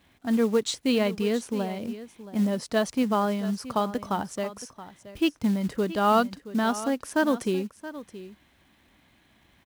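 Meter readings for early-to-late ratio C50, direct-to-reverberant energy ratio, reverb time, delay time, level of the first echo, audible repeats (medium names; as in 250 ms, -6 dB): no reverb, no reverb, no reverb, 674 ms, -15.0 dB, 1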